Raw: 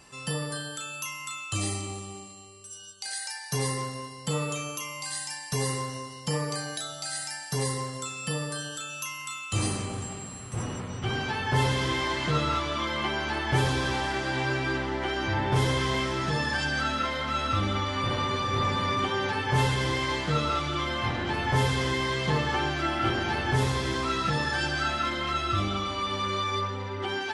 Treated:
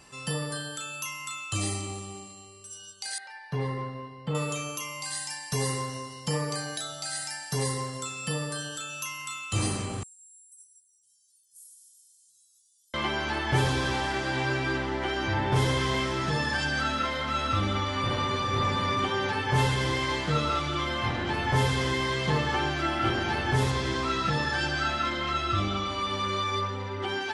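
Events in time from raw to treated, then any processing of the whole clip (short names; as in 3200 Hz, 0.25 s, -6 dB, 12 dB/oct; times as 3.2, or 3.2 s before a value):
3.18–4.35 air absorption 420 m
10.03–12.94 inverse Chebyshev high-pass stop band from 2400 Hz, stop band 70 dB
23.71–25.91 LPF 7900 Hz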